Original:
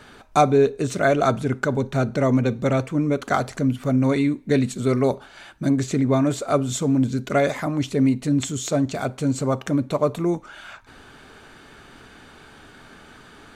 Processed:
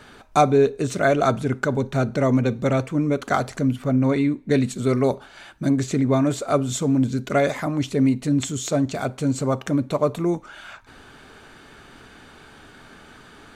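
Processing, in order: 3.82–4.51 high shelf 4300 Hz -8 dB

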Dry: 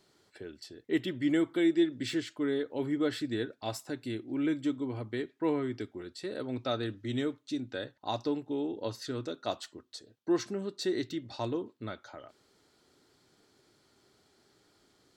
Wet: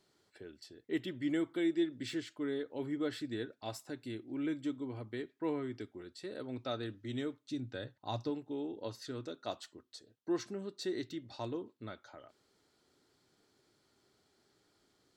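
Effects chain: 7.46–8.3 bell 110 Hz +9 dB 1.2 oct; gain -6 dB

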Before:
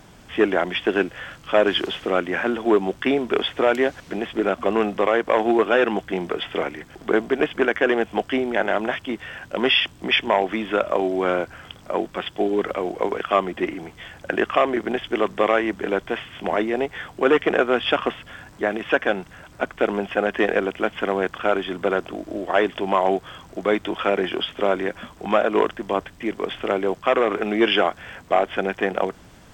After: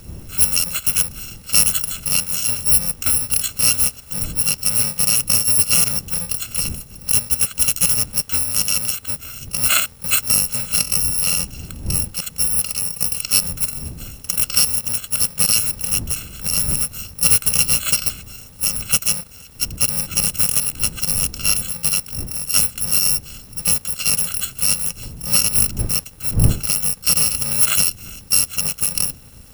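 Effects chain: FFT order left unsorted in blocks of 128 samples; wind noise 120 Hz -35 dBFS; gain +2.5 dB

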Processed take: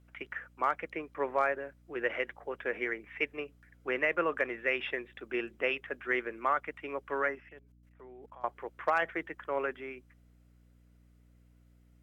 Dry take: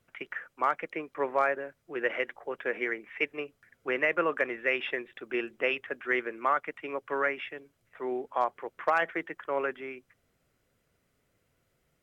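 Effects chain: 7.35–8.44 level quantiser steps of 24 dB; 7.31–7.51 spectral repair 2100–4400 Hz after; hum 60 Hz, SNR 26 dB; gain -2.5 dB

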